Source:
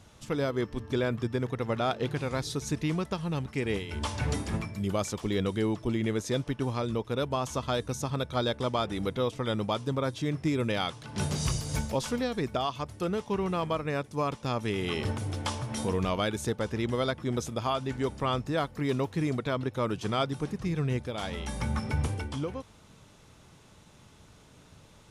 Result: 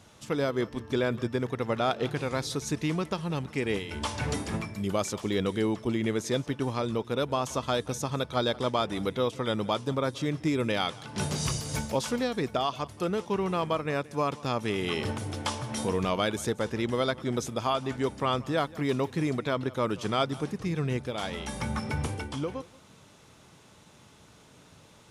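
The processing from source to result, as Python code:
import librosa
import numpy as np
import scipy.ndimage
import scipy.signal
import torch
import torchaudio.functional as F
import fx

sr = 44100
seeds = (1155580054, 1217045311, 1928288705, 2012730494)

p1 = fx.highpass(x, sr, hz=140.0, slope=6)
p2 = p1 + fx.echo_single(p1, sr, ms=178, db=-21.0, dry=0)
y = p2 * librosa.db_to_amplitude(2.0)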